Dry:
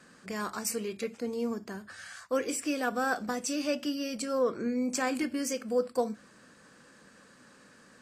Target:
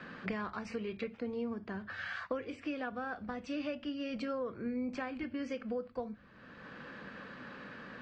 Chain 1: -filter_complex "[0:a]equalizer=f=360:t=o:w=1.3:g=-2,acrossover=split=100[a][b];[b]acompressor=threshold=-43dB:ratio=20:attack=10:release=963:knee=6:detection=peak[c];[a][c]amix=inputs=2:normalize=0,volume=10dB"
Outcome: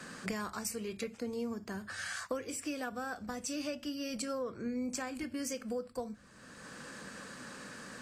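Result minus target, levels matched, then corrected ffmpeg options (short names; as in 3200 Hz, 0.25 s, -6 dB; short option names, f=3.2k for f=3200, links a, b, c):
4000 Hz band +5.0 dB
-filter_complex "[0:a]lowpass=f=3.4k:w=0.5412,lowpass=f=3.4k:w=1.3066,equalizer=f=360:t=o:w=1.3:g=-2,acrossover=split=100[a][b];[b]acompressor=threshold=-43dB:ratio=20:attack=10:release=963:knee=6:detection=peak[c];[a][c]amix=inputs=2:normalize=0,volume=10dB"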